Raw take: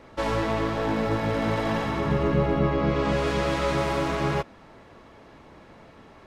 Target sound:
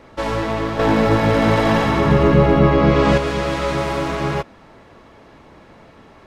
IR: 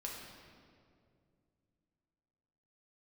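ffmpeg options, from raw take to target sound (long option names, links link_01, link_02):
-filter_complex "[0:a]asettb=1/sr,asplit=3[link_01][link_02][link_03];[link_01]atrim=end=0.794[link_04];[link_02]atrim=start=0.79:end=3.18,asetpts=PTS-STARTPTS,afade=type=in:duration=0.004:curve=qsin,afade=type=out:start_time=2.386:duration=0.004:curve=qsin,acontrast=56[link_05];[link_03]atrim=start=3.176[link_06];[link_04][link_05]acrossfade=duration=0.004:curve1=hsin:curve2=qsin[link_07];[link_07][link_06]acrossfade=duration=0.004:curve1=qsin:curve2=hsin,volume=4dB"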